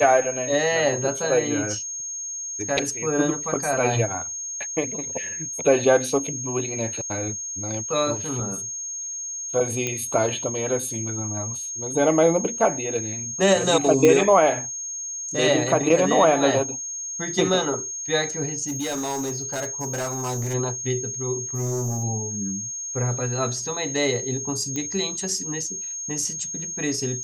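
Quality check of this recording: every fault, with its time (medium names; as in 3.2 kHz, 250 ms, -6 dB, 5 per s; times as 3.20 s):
whine 6.5 kHz -29 dBFS
9.87 s: pop -11 dBFS
14.05 s: pop -6 dBFS
18.67–20.55 s: clipped -24 dBFS
21.55–22.04 s: clipped -22.5 dBFS
24.76 s: pop -15 dBFS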